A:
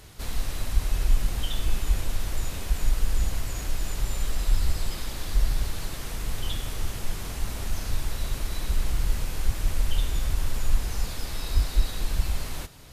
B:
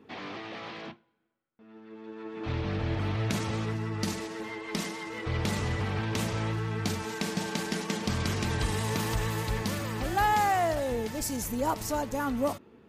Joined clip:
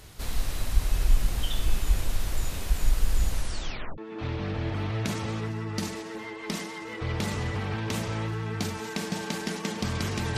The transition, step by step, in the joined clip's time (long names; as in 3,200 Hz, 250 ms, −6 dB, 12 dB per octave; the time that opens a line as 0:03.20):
A
0:03.31: tape stop 0.67 s
0:03.98: continue with B from 0:02.23